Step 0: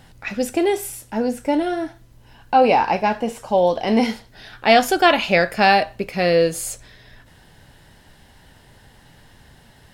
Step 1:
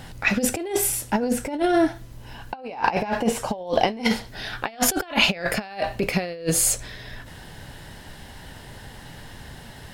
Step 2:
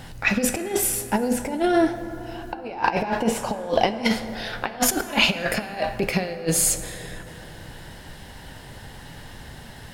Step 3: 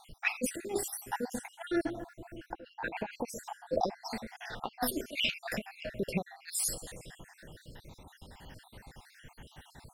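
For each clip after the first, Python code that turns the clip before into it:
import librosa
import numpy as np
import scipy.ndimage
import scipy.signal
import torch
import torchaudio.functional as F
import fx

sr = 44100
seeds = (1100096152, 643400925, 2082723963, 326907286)

y1 = fx.over_compress(x, sr, threshold_db=-24.0, ratio=-0.5)
y1 = y1 * 10.0 ** (1.5 / 20.0)
y2 = fx.rev_plate(y1, sr, seeds[0], rt60_s=4.3, hf_ratio=0.35, predelay_ms=0, drr_db=10.5)
y3 = fx.spec_dropout(y2, sr, seeds[1], share_pct=61)
y3 = y3 * 10.0 ** (-8.5 / 20.0)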